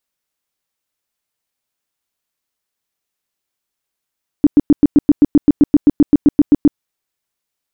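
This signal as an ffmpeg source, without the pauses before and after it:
-f lavfi -i "aevalsrc='0.668*sin(2*PI*292*mod(t,0.13))*lt(mod(t,0.13),8/292)':d=2.34:s=44100"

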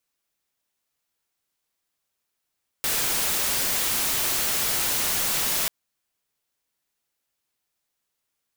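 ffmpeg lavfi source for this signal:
-f lavfi -i "anoisesrc=c=white:a=0.103:d=2.84:r=44100:seed=1"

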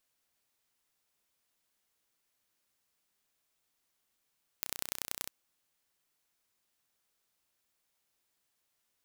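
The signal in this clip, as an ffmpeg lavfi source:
-f lavfi -i "aevalsrc='0.501*eq(mod(n,1423),0)*(0.5+0.5*eq(mod(n,4269),0))':d=0.67:s=44100"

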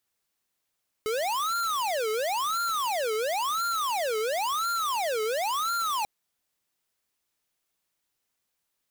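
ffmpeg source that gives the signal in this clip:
-f lavfi -i "aevalsrc='0.0398*(2*lt(mod((909.5*t-480.5/(2*PI*0.96)*sin(2*PI*0.96*t)),1),0.5)-1)':d=4.99:s=44100"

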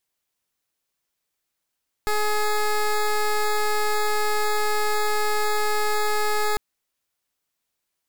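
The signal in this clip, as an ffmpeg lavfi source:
-f lavfi -i "aevalsrc='0.0841*(2*lt(mod(422*t,1),0.14)-1)':d=4.5:s=44100"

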